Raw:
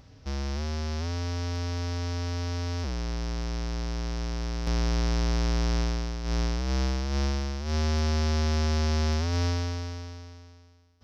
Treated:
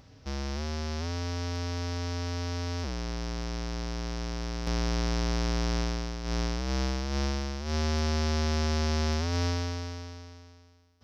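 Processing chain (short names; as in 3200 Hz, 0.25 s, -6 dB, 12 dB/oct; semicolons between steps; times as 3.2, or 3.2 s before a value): low shelf 80 Hz -6 dB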